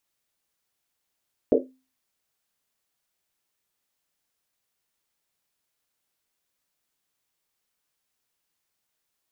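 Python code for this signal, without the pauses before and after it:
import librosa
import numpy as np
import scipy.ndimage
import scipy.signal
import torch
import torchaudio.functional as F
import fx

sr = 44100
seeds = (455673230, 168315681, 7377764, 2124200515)

y = fx.risset_drum(sr, seeds[0], length_s=1.1, hz=260.0, decay_s=0.35, noise_hz=450.0, noise_width_hz=230.0, noise_pct=75)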